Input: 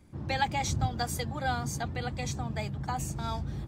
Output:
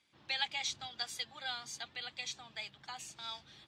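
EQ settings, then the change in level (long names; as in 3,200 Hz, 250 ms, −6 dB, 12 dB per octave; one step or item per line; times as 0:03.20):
resonant band-pass 3,400 Hz, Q 2
+4.0 dB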